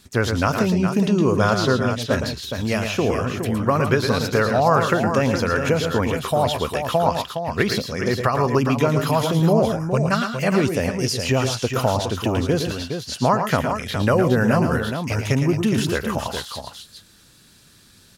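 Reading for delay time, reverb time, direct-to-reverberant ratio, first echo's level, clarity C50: 0.112 s, none, none, -7.5 dB, none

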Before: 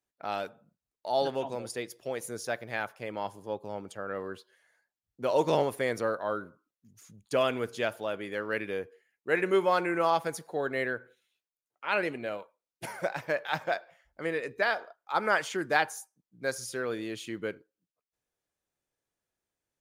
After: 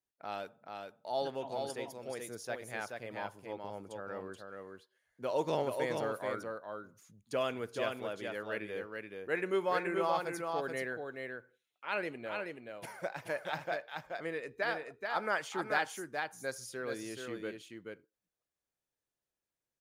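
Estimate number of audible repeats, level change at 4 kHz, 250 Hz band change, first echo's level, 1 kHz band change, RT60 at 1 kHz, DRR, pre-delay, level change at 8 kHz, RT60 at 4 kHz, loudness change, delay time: 1, -5.5 dB, -5.5 dB, -4.5 dB, -5.5 dB, none, none, none, -5.5 dB, none, -6.0 dB, 0.429 s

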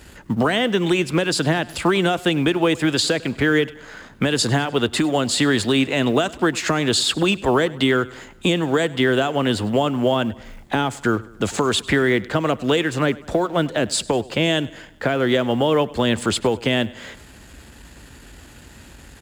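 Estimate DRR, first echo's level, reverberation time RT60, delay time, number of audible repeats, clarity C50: none, -21.0 dB, none, 0.1 s, 3, none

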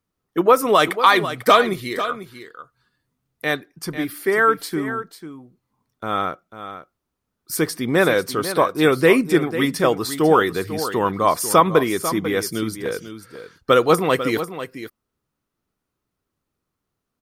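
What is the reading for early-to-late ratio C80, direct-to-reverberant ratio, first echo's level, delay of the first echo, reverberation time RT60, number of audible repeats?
none, none, -11.5 dB, 0.495 s, none, 1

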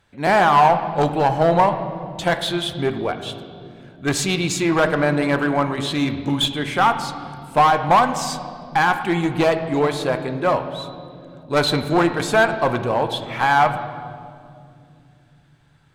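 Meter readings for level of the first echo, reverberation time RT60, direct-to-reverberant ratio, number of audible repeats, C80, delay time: none, 2.5 s, 8.0 dB, none, 11.0 dB, none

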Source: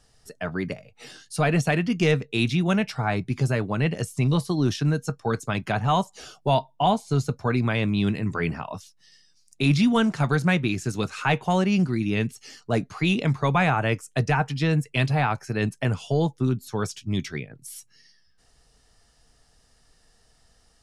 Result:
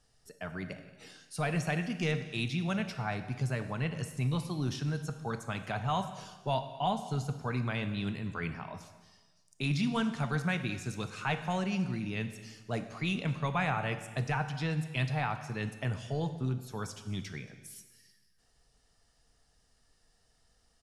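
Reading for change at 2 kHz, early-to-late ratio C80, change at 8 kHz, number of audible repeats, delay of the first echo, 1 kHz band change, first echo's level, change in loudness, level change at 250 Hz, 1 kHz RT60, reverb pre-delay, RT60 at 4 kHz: -8.5 dB, 11.5 dB, -8.5 dB, 1, 0.226 s, -9.0 dB, -22.0 dB, -10.0 dB, -10.5 dB, 1.3 s, 22 ms, 1.2 s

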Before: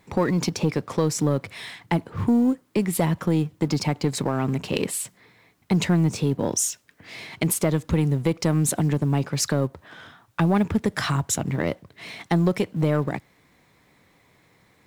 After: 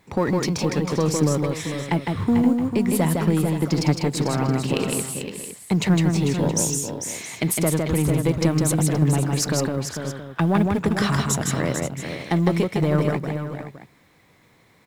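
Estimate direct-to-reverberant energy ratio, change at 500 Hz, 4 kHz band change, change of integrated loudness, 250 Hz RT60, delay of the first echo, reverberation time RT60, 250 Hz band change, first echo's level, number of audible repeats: none, +2.5 dB, +2.5 dB, +1.5 dB, none, 0.158 s, none, +2.5 dB, -3.5 dB, 4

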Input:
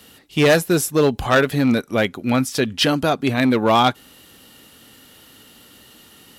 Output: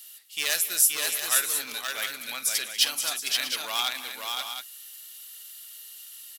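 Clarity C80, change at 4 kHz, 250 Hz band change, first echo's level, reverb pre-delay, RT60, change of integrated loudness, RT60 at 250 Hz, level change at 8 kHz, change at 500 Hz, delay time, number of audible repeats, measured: none, -1.5 dB, -32.5 dB, -16.0 dB, none, none, -7.0 dB, none, +6.0 dB, -24.5 dB, 50 ms, 6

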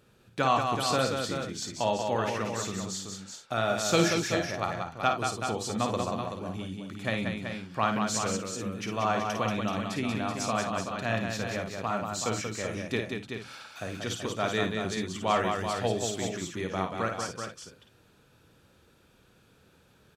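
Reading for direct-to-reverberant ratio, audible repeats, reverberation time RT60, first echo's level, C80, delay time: none, 5, none, -6.5 dB, none, 53 ms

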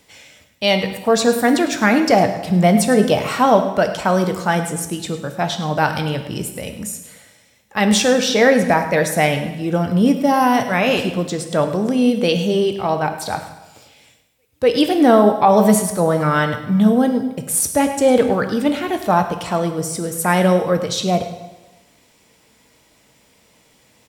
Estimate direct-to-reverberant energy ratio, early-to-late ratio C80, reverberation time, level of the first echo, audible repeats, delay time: 6.0 dB, 10.0 dB, 1.1 s, -14.0 dB, 1, 0.104 s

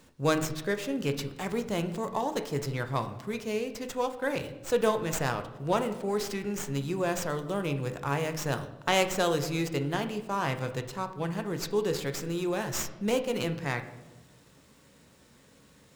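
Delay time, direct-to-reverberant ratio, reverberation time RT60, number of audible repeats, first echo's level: none, 7.5 dB, 1.1 s, none, none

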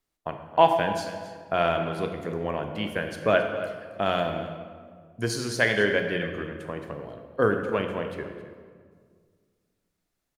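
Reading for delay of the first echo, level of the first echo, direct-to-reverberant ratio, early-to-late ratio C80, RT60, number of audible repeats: 0.269 s, -14.5 dB, 5.0 dB, 7.5 dB, 1.9 s, 1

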